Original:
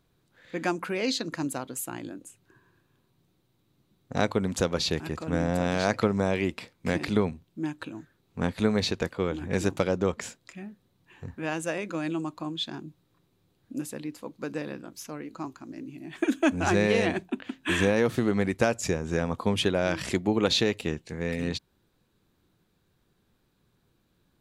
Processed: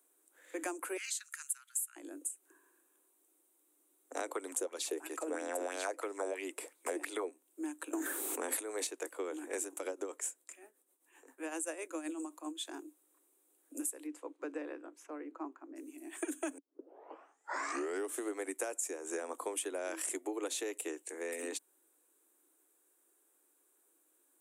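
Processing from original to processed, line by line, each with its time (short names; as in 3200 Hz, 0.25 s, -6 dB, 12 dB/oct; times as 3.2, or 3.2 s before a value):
0.97–1.96 elliptic high-pass 1400 Hz, stop band 60 dB
4.28–7.32 LFO bell 3 Hz 360–4400 Hz +12 dB
7.93–8.87 fast leveller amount 100%
9.62–12.65 tremolo 7.7 Hz, depth 66%
14.06–15.75 LPF 4000 Hz -> 1500 Hz
16.58 tape start 1.66 s
whole clip: steep high-pass 280 Hz 96 dB/oct; resonant high shelf 6300 Hz +13 dB, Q 3; compressor, threshold -30 dBFS; gain -5 dB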